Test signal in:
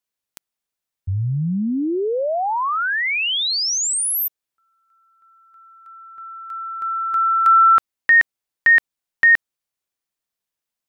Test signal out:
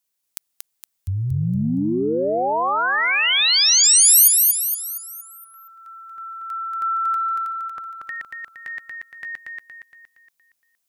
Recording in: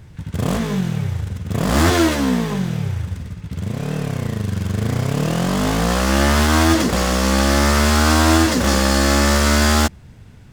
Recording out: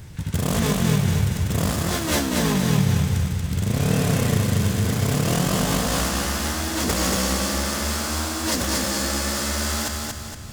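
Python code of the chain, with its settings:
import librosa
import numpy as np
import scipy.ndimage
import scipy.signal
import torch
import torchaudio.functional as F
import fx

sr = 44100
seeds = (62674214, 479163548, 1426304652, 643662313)

p1 = fx.over_compress(x, sr, threshold_db=-22.0, ratio=-1.0)
p2 = fx.high_shelf(p1, sr, hz=4400.0, db=10.5)
p3 = p2 + fx.echo_feedback(p2, sr, ms=233, feedback_pct=46, wet_db=-3.0, dry=0)
y = F.gain(torch.from_numpy(p3), -3.0).numpy()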